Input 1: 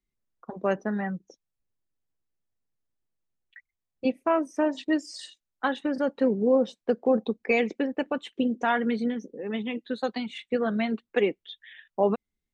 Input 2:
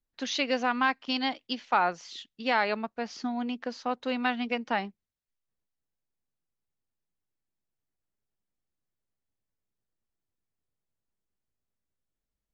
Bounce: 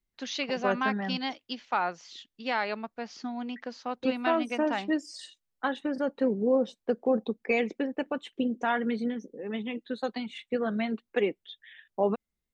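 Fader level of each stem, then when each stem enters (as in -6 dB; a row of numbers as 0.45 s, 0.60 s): -3.0 dB, -3.5 dB; 0.00 s, 0.00 s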